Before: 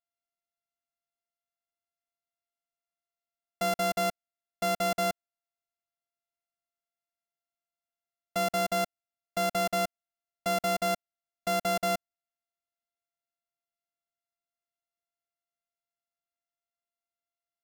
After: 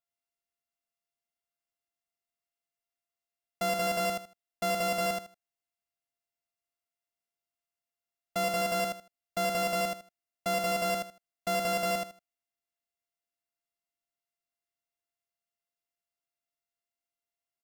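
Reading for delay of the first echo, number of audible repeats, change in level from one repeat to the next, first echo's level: 78 ms, 3, -13.5 dB, -4.0 dB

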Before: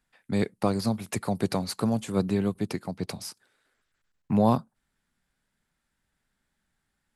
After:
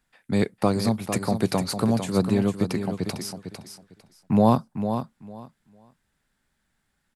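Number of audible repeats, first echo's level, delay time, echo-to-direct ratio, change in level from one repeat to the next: 2, -8.5 dB, 452 ms, -8.5 dB, -14.5 dB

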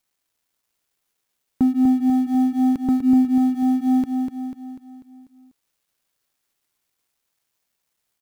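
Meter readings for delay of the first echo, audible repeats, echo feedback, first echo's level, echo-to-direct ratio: 246 ms, 6, 51%, -5.5 dB, -4.0 dB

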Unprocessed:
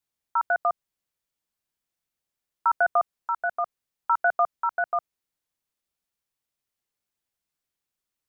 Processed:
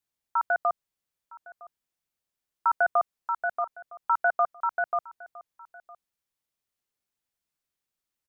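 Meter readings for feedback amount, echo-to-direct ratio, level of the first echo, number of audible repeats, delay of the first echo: no regular repeats, -21.5 dB, -21.5 dB, 1, 960 ms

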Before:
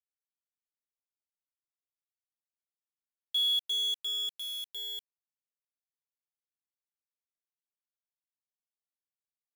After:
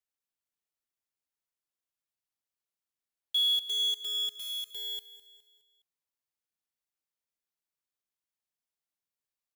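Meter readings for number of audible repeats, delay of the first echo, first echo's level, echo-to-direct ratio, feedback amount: 3, 207 ms, -15.5 dB, -14.5 dB, 46%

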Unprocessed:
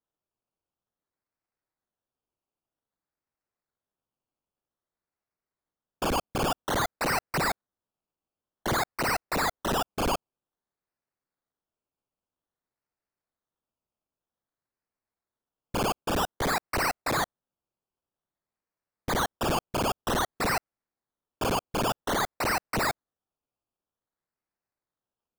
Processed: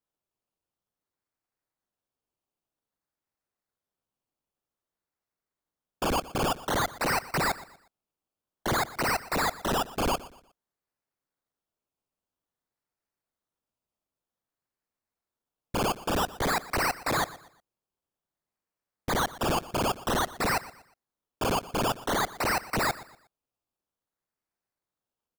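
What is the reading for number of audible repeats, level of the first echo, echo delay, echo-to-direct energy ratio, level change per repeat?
2, -18.0 dB, 120 ms, -17.5 dB, -9.5 dB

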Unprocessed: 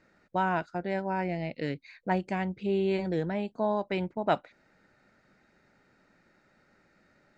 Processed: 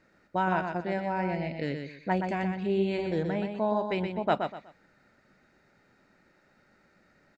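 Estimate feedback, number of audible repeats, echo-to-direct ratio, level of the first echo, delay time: 27%, 3, -5.5 dB, -6.0 dB, 123 ms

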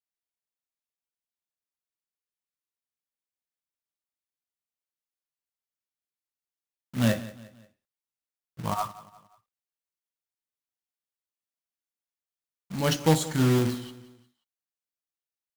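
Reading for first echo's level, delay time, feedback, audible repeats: -17.5 dB, 177 ms, 42%, 3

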